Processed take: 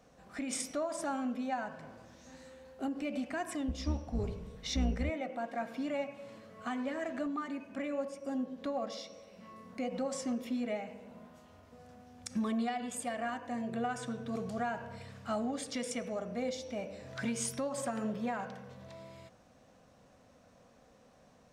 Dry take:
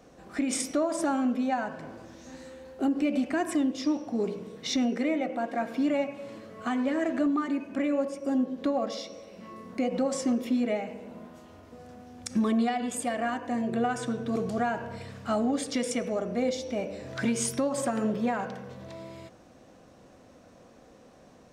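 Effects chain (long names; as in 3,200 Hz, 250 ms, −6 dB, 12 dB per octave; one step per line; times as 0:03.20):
0:03.68–0:05.10: sub-octave generator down 2 octaves, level +2 dB
parametric band 340 Hz −9 dB 0.58 octaves
level −6 dB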